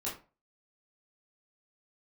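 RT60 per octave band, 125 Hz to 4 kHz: 0.40, 0.35, 0.35, 0.35, 0.30, 0.20 seconds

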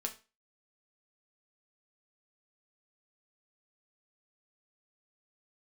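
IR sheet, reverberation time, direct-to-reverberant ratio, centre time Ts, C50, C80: 0.30 s, 2.5 dB, 10 ms, 14.0 dB, 19.0 dB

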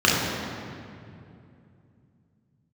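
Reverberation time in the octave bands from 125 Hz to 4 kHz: 4.2, 3.7, 2.8, 2.3, 2.1, 1.6 seconds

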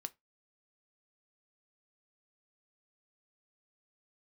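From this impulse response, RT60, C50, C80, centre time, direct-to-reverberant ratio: 0.20 s, 25.5 dB, 35.5 dB, 3 ms, 11.0 dB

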